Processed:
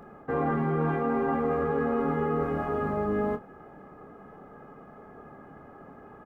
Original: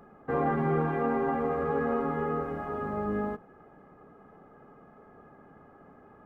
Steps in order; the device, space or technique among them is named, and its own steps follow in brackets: doubling 26 ms -10 dB; compression on the reversed sound (reverse; compression, threshold -29 dBFS, peak gain reduction 7.5 dB; reverse); trim +5.5 dB

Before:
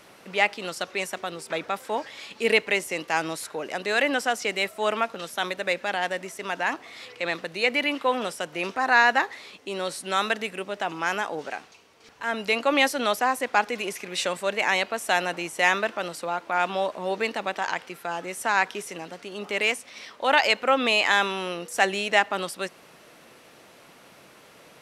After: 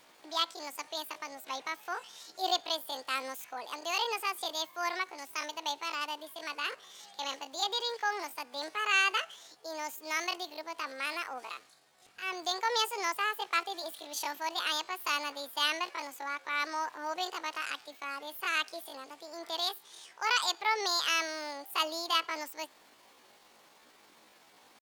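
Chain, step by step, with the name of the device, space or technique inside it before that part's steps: chipmunk voice (pitch shift +8.5 st); trim -8.5 dB

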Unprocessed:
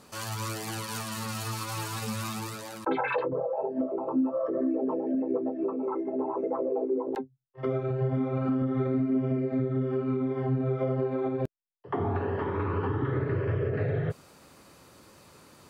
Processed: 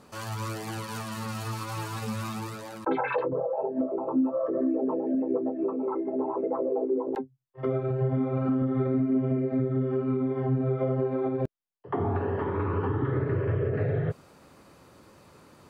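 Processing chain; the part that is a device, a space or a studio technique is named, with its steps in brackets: behind a face mask (treble shelf 2.6 kHz -8 dB); trim +1.5 dB

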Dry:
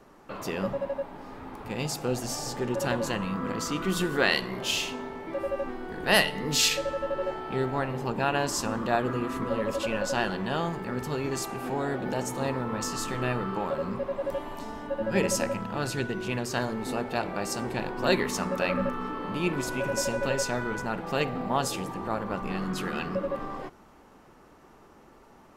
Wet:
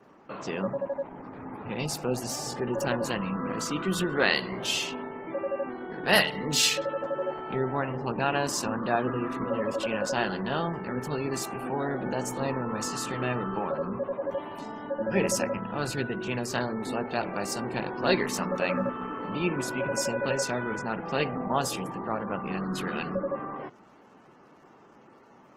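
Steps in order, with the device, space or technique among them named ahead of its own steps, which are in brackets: 1.05–1.70 s: bass shelf 240 Hz +7 dB; noise-suppressed video call (high-pass 110 Hz 24 dB/octave; spectral gate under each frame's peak -30 dB strong; Opus 16 kbps 48 kHz)

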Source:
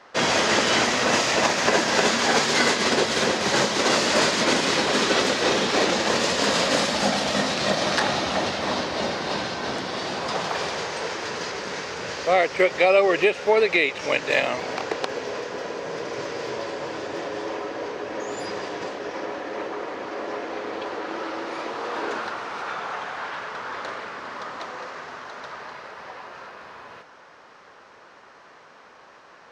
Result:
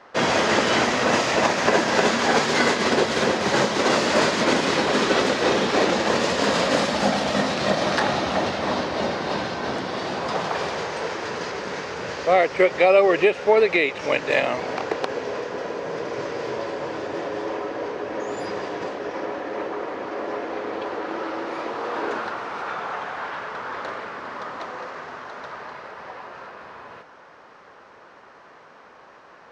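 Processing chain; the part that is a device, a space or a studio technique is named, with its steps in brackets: behind a face mask (treble shelf 2.7 kHz -8 dB); trim +2.5 dB

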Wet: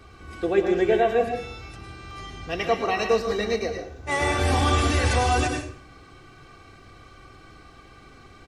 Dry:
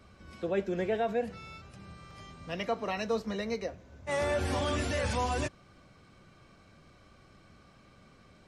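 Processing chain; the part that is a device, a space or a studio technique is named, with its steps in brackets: microphone above a desk (comb 2.6 ms, depth 61%; reverberation RT60 0.50 s, pre-delay 98 ms, DRR 3.5 dB); trim +7 dB

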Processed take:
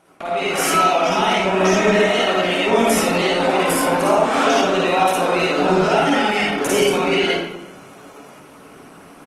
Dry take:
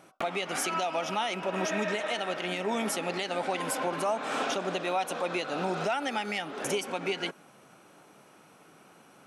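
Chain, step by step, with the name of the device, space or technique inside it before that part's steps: speakerphone in a meeting room (reverberation RT60 0.90 s, pre-delay 43 ms, DRR -6 dB; speakerphone echo 350 ms, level -28 dB; level rider gain up to 8 dB; Opus 20 kbps 48 kHz)

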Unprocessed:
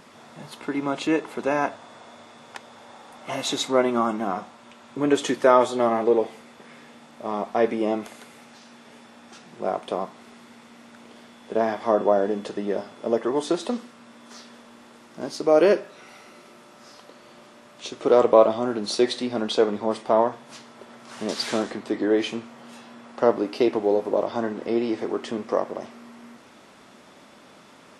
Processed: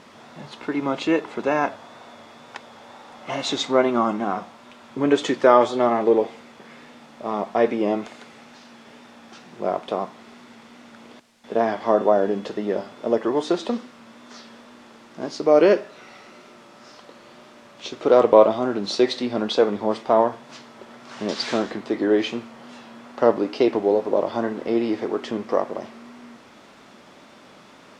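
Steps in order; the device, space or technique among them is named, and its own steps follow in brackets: worn cassette (low-pass 8.1 kHz; wow and flutter; level dips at 11.20 s, 236 ms -16 dB; white noise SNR 34 dB); low-pass 6.4 kHz 12 dB/octave; trim +2 dB

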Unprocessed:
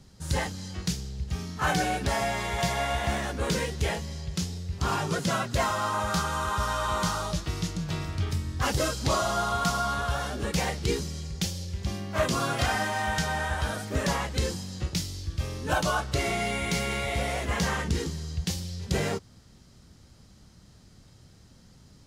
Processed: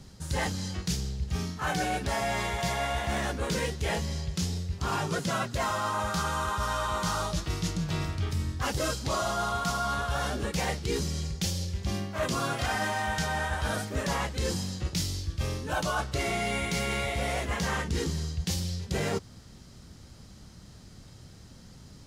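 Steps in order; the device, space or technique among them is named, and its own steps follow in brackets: compression on the reversed sound (reverse; compression, threshold -31 dBFS, peak gain reduction 11 dB; reverse); trim +4.5 dB

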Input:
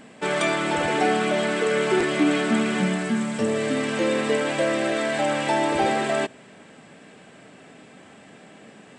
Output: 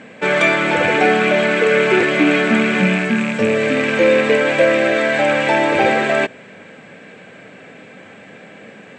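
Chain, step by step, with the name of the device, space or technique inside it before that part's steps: car door speaker with a rattle (rattle on loud lows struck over -28 dBFS, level -21 dBFS; cabinet simulation 100–7000 Hz, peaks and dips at 100 Hz +8 dB, 190 Hz +3 dB, 510 Hz +8 dB, 1.6 kHz +6 dB, 2.3 kHz +8 dB, 5.1 kHz -5 dB); trim +4.5 dB

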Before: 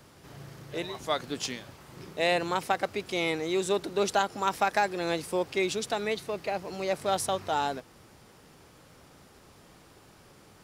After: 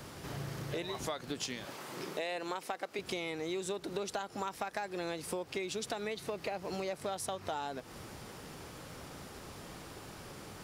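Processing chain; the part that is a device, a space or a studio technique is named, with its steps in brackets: 1.65–2.99 s: high-pass 260 Hz 12 dB/octave; serial compression, peaks first (compression 5:1, threshold -37 dBFS, peak gain reduction 15 dB; compression 2:1, threshold -45 dBFS, peak gain reduction 7 dB); trim +7 dB

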